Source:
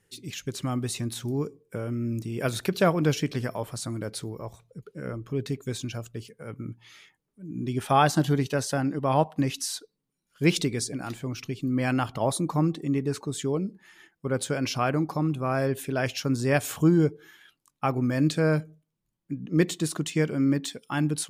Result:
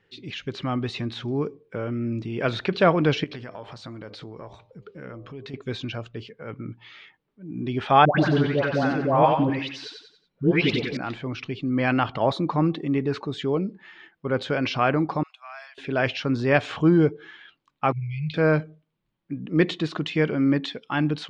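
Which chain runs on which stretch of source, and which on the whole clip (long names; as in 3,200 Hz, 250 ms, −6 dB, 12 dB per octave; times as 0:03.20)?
0:03.24–0:05.54: hum removal 100.1 Hz, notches 12 + downward compressor 5 to 1, threshold −38 dBFS + high-shelf EQ 4,500 Hz +7 dB
0:08.05–0:10.97: high-shelf EQ 6,500 Hz −10 dB + all-pass dispersion highs, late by 134 ms, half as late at 1,000 Hz + repeating echo 92 ms, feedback 37%, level −6 dB
0:15.23–0:15.78: Butterworth high-pass 630 Hz 96 dB per octave + first difference
0:17.92–0:18.34: linear-phase brick-wall band-stop 170–2,000 Hz + high-frequency loss of the air 340 metres
whole clip: low-shelf EQ 240 Hz −7 dB; transient designer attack −2 dB, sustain +2 dB; low-pass filter 3,800 Hz 24 dB per octave; level +6 dB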